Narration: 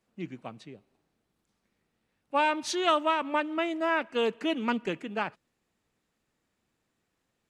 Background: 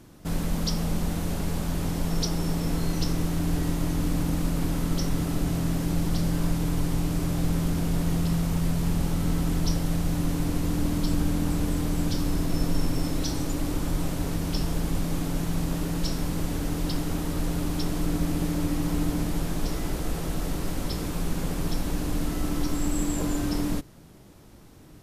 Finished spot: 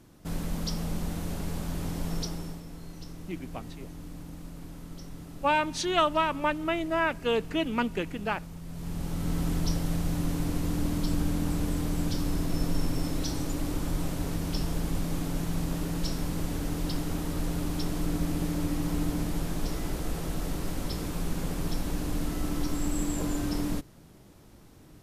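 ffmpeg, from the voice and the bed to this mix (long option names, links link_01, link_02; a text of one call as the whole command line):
ffmpeg -i stem1.wav -i stem2.wav -filter_complex "[0:a]adelay=3100,volume=0.5dB[link_01];[1:a]volume=8.5dB,afade=type=out:start_time=2.13:duration=0.51:silence=0.266073,afade=type=in:start_time=8.66:duration=0.78:silence=0.211349[link_02];[link_01][link_02]amix=inputs=2:normalize=0" out.wav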